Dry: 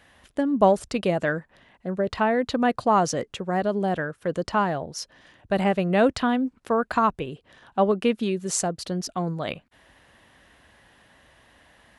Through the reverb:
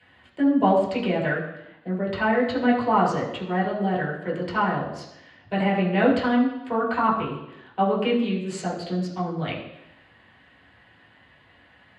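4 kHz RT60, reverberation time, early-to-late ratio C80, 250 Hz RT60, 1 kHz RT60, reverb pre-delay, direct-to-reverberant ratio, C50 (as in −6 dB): 0.90 s, 0.85 s, 7.5 dB, 0.85 s, 0.85 s, 3 ms, −6.0 dB, 5.5 dB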